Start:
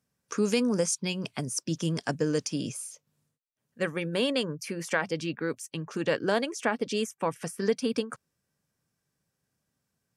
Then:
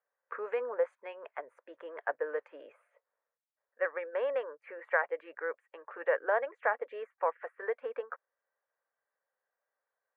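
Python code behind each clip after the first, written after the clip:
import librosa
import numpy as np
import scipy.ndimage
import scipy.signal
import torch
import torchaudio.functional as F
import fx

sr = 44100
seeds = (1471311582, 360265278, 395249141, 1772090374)

y = scipy.signal.sosfilt(scipy.signal.ellip(3, 1.0, 50, [510.0, 1900.0], 'bandpass', fs=sr, output='sos'), x)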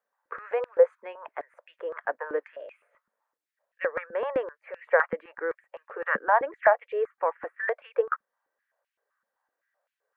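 y = fx.peak_eq(x, sr, hz=1000.0, db=3.5, octaves=2.9)
y = fx.filter_held_highpass(y, sr, hz=7.8, low_hz=210.0, high_hz=2600.0)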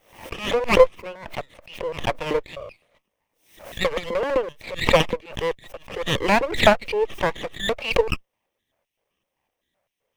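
y = fx.lower_of_two(x, sr, delay_ms=0.33)
y = fx.pre_swell(y, sr, db_per_s=110.0)
y = y * 10.0 ** (6.0 / 20.0)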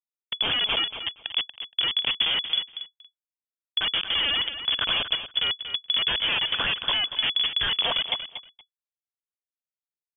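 y = fx.schmitt(x, sr, flips_db=-26.5)
y = fx.echo_feedback(y, sr, ms=235, feedback_pct=16, wet_db=-10.5)
y = fx.freq_invert(y, sr, carrier_hz=3400)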